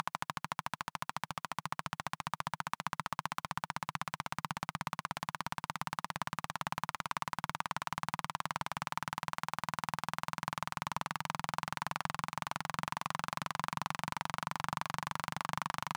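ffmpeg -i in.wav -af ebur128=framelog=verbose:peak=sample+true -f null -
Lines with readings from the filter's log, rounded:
Integrated loudness:
  I:         -39.2 LUFS
  Threshold: -49.2 LUFS
Loudness range:
  LRA:         1.4 LU
  Threshold: -59.2 LUFS
  LRA low:   -39.9 LUFS
  LRA high:  -38.5 LUFS
Sample peak:
  Peak:      -15.5 dBFS
True peak:
  Peak:      -15.3 dBFS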